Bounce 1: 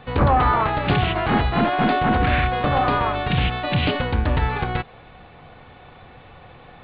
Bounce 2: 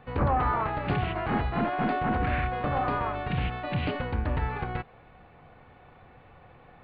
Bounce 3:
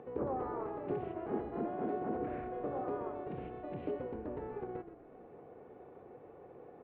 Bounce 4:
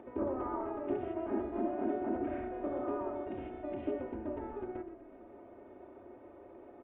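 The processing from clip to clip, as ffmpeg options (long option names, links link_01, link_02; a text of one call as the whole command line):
ffmpeg -i in.wav -af "equalizer=frequency=3600:width=1.9:gain=-9,volume=-8dB" out.wav
ffmpeg -i in.wav -filter_complex "[0:a]acompressor=mode=upward:threshold=-33dB:ratio=2.5,bandpass=frequency=400:width_type=q:width=3.1:csg=0,asplit=7[link_01][link_02][link_03][link_04][link_05][link_06][link_07];[link_02]adelay=123,afreqshift=-31,volume=-11.5dB[link_08];[link_03]adelay=246,afreqshift=-62,volume=-16.9dB[link_09];[link_04]adelay=369,afreqshift=-93,volume=-22.2dB[link_10];[link_05]adelay=492,afreqshift=-124,volume=-27.6dB[link_11];[link_06]adelay=615,afreqshift=-155,volume=-32.9dB[link_12];[link_07]adelay=738,afreqshift=-186,volume=-38.3dB[link_13];[link_01][link_08][link_09][link_10][link_11][link_12][link_13]amix=inputs=7:normalize=0" out.wav
ffmpeg -i in.wav -af "bandreject=frequency=61.86:width_type=h:width=4,bandreject=frequency=123.72:width_type=h:width=4,bandreject=frequency=185.58:width_type=h:width=4,bandreject=frequency=247.44:width_type=h:width=4,bandreject=frequency=309.3:width_type=h:width=4,bandreject=frequency=371.16:width_type=h:width=4,bandreject=frequency=433.02:width_type=h:width=4,bandreject=frequency=494.88:width_type=h:width=4,bandreject=frequency=556.74:width_type=h:width=4,bandreject=frequency=618.6:width_type=h:width=4,bandreject=frequency=680.46:width_type=h:width=4,bandreject=frequency=742.32:width_type=h:width=4,bandreject=frequency=804.18:width_type=h:width=4,bandreject=frequency=866.04:width_type=h:width=4,bandreject=frequency=927.9:width_type=h:width=4,bandreject=frequency=989.76:width_type=h:width=4,bandreject=frequency=1051.62:width_type=h:width=4,bandreject=frequency=1113.48:width_type=h:width=4,bandreject=frequency=1175.34:width_type=h:width=4,bandreject=frequency=1237.2:width_type=h:width=4,bandreject=frequency=1299.06:width_type=h:width=4,bandreject=frequency=1360.92:width_type=h:width=4,bandreject=frequency=1422.78:width_type=h:width=4,bandreject=frequency=1484.64:width_type=h:width=4,bandreject=frequency=1546.5:width_type=h:width=4,bandreject=frequency=1608.36:width_type=h:width=4,bandreject=frequency=1670.22:width_type=h:width=4,bandreject=frequency=1732.08:width_type=h:width=4,bandreject=frequency=1793.94:width_type=h:width=4,bandreject=frequency=1855.8:width_type=h:width=4,bandreject=frequency=1917.66:width_type=h:width=4,bandreject=frequency=1979.52:width_type=h:width=4,bandreject=frequency=2041.38:width_type=h:width=4,aresample=8000,aresample=44100,aecho=1:1:3.2:0.92" out.wav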